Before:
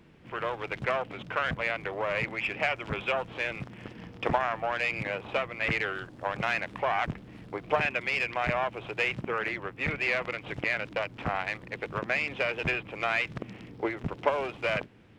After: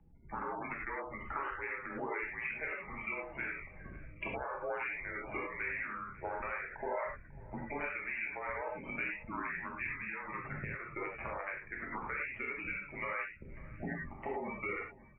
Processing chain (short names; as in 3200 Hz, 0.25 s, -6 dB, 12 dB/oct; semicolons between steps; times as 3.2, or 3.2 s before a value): Wiener smoothing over 9 samples; spectral gate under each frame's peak -15 dB strong; vibrato 5 Hz 21 cents; bell 450 Hz -13.5 dB 2.2 oct; compressor 12:1, threshold -44 dBFS, peak gain reduction 17.5 dB; mistuned SSB -170 Hz 220–2800 Hz; 9.96–10.92 ten-band EQ 125 Hz +9 dB, 1000 Hz +7 dB, 2000 Hz -6 dB; feedback echo 0.545 s, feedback 43%, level -21 dB; non-linear reverb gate 0.13 s flat, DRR -3 dB; ending taper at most 130 dB/s; gain +5.5 dB